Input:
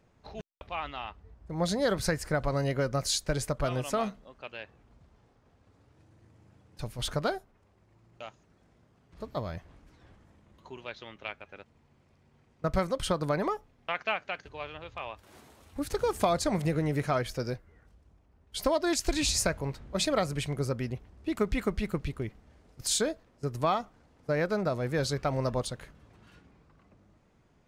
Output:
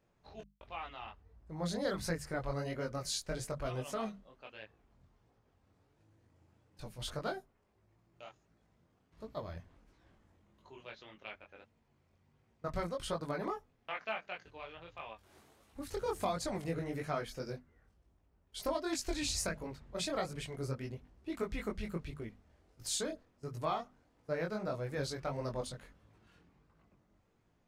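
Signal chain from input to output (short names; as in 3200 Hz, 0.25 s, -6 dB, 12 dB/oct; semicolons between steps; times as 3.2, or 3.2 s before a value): notches 50/100/150/200/250 Hz; chorus voices 2, 1.4 Hz, delay 21 ms, depth 3 ms; gain -5 dB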